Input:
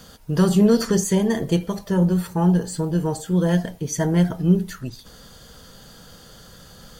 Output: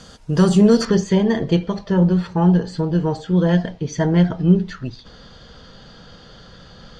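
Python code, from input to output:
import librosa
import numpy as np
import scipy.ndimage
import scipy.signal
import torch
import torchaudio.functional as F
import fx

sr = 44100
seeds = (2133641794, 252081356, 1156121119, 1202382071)

y = fx.lowpass(x, sr, hz=fx.steps((0.0, 8200.0), (0.85, 4800.0)), slope=24)
y = y * 10.0 ** (3.0 / 20.0)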